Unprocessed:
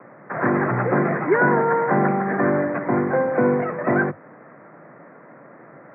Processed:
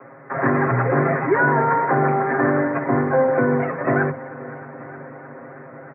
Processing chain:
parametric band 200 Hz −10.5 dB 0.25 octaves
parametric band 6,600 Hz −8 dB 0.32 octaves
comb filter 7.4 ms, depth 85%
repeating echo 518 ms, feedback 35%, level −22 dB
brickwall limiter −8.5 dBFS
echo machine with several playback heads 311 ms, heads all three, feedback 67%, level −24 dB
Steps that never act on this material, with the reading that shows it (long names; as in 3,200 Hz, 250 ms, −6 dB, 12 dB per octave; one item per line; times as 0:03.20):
parametric band 6,600 Hz: nothing at its input above 2,200 Hz